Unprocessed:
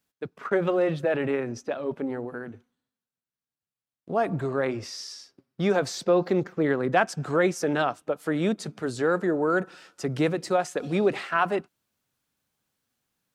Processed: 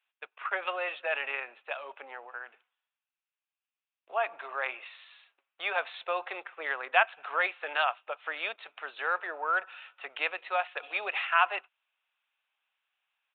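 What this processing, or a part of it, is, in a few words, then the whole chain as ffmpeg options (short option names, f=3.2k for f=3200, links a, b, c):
musical greeting card: -af "aresample=8000,aresample=44100,highpass=f=760:w=0.5412,highpass=f=760:w=1.3066,equalizer=f=2.6k:t=o:w=0.38:g=9"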